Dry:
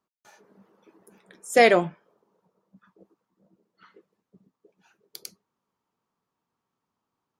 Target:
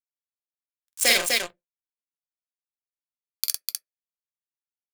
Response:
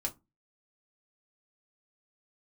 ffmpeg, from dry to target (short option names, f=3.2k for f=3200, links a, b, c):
-filter_complex "[0:a]highshelf=f=9.5k:g=5,atempo=1.5,acrossover=split=140|3000[a][b][c];[b]acompressor=threshold=-29dB:ratio=10[d];[a][d][c]amix=inputs=3:normalize=0,acrusher=bits=4:mix=0:aa=0.5,tiltshelf=f=1.1k:g=-8,acrusher=bits=9:mode=log:mix=0:aa=0.000001,aecho=1:1:46.65|250.7:0.708|0.708,asplit=2[e][f];[1:a]atrim=start_sample=2205,asetrate=79380,aresample=44100[g];[f][g]afir=irnorm=-1:irlink=0,volume=0dB[h];[e][h]amix=inputs=2:normalize=0,volume=1.5dB"